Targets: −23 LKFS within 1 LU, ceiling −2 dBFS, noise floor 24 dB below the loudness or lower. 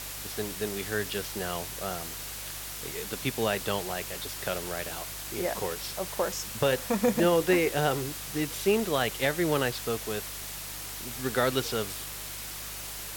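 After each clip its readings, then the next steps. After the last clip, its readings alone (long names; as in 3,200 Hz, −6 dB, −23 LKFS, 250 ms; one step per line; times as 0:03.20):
mains hum 50 Hz; hum harmonics up to 150 Hz; level of the hum −46 dBFS; background noise floor −39 dBFS; target noise floor −54 dBFS; integrated loudness −30.0 LKFS; sample peak −12.5 dBFS; target loudness −23.0 LKFS
→ hum removal 50 Hz, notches 3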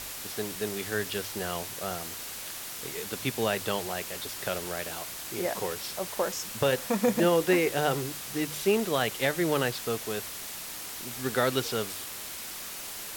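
mains hum none found; background noise floor −39 dBFS; target noise floor −54 dBFS
→ noise reduction from a noise print 15 dB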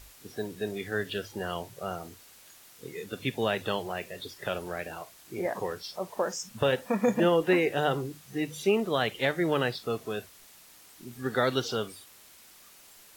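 background noise floor −54 dBFS; target noise floor −55 dBFS
→ noise reduction from a noise print 6 dB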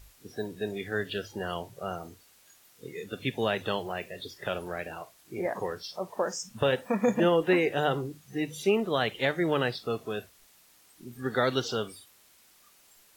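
background noise floor −60 dBFS; integrated loudness −30.5 LKFS; sample peak −12.5 dBFS; target loudness −23.0 LKFS
→ level +7.5 dB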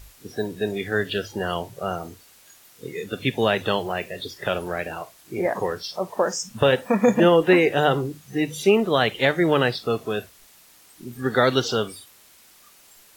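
integrated loudness −23.0 LKFS; sample peak −5.0 dBFS; background noise floor −53 dBFS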